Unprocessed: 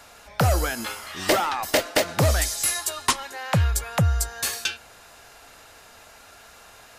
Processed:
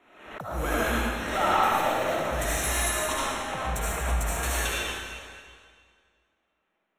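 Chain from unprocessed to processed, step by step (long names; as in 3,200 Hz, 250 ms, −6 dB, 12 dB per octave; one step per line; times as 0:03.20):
noise in a band 180–2,800 Hz −37 dBFS
high-shelf EQ 2,100 Hz −8.5 dB
compressor whose output falls as the input rises −24 dBFS, ratio −0.5
noise gate −30 dBFS, range −42 dB
leveller curve on the samples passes 1
Butterworth band-reject 4,800 Hz, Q 3.9
comb and all-pass reverb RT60 2 s, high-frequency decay 0.95×, pre-delay 35 ms, DRR −7.5 dB
background raised ahead of every attack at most 70 dB per second
level −8.5 dB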